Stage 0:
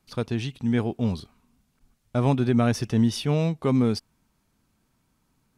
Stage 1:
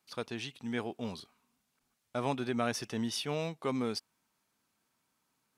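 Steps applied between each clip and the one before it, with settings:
high-pass filter 680 Hz 6 dB per octave
level −3.5 dB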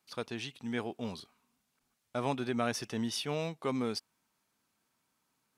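no processing that can be heard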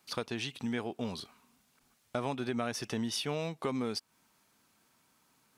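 downward compressor 3 to 1, threshold −43 dBFS, peak gain reduction 12.5 dB
level +9 dB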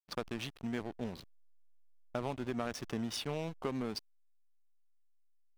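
slack as between gear wheels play −34 dBFS
one half of a high-frequency compander decoder only
level −2 dB

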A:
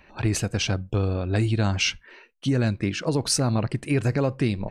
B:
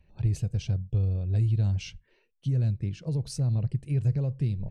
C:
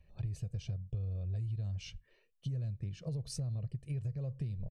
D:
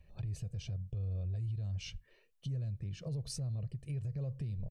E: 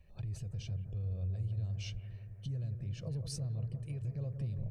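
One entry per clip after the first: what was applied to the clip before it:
drawn EQ curve 150 Hz 0 dB, 260 Hz −17 dB, 470 Hz −13 dB, 1,300 Hz −26 dB, 3,200 Hz −17 dB
comb filter 1.7 ms, depth 42%; downward compressor, threshold −31 dBFS, peak gain reduction 12 dB; level −4 dB
brickwall limiter −34.5 dBFS, peak gain reduction 6.5 dB; level +2.5 dB
bucket-brigade delay 173 ms, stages 2,048, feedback 75%, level −9 dB; level −1 dB

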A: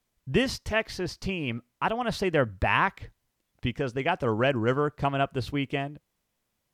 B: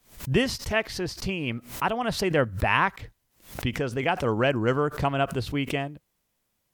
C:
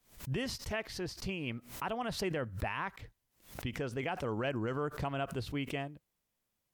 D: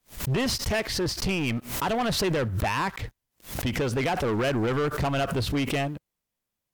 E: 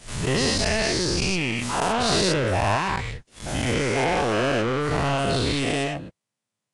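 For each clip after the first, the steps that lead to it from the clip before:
high-shelf EQ 9,600 Hz +6 dB; background raised ahead of every attack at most 140 dB per second; level +1 dB
brickwall limiter −16.5 dBFS, peak gain reduction 9 dB; level −8.5 dB
leveller curve on the samples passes 3; level +4.5 dB
every bin's largest magnitude spread in time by 240 ms; level −3.5 dB; Ogg Vorbis 48 kbit/s 22,050 Hz

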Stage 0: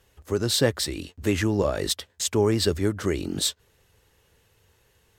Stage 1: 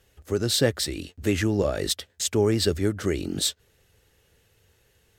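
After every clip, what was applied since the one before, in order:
parametric band 1,000 Hz −7.5 dB 0.4 octaves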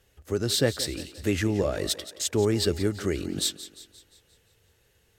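feedback echo with a high-pass in the loop 175 ms, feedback 52%, high-pass 240 Hz, level −14.5 dB
level −2 dB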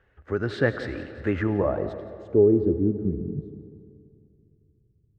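low-pass filter sweep 1,600 Hz → 140 Hz, 0:01.26–0:03.45
convolution reverb RT60 2.5 s, pre-delay 45 ms, DRR 11.5 dB

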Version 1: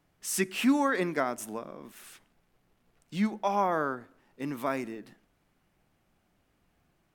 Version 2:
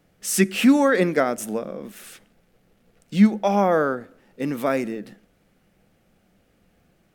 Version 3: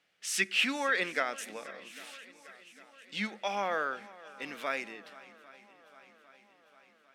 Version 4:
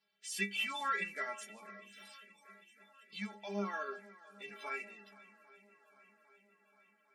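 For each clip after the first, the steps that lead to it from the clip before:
thirty-one-band graphic EQ 200 Hz +7 dB, 500 Hz +8 dB, 1,000 Hz −8 dB; level +7.5 dB
resonant band-pass 2,900 Hz, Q 1.1; feedback echo with a long and a short gap by turns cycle 801 ms, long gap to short 1.5 to 1, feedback 57%, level −20 dB
spectral magnitudes quantised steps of 30 dB; stiff-string resonator 200 Hz, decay 0.25 s, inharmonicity 0.008; level +4.5 dB

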